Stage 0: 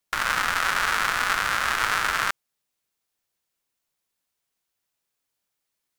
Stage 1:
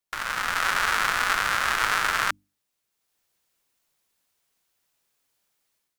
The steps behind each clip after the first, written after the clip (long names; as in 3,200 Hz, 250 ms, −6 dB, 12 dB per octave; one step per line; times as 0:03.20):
automatic gain control gain up to 12.5 dB
mains-hum notches 50/100/150/200/250/300 Hz
level −6 dB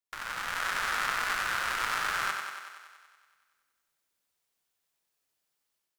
feedback echo with a high-pass in the loop 94 ms, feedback 69%, high-pass 180 Hz, level −5.5 dB
level −8.5 dB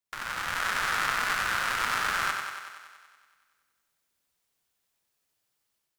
sub-octave generator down 1 octave, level −1 dB
level +2.5 dB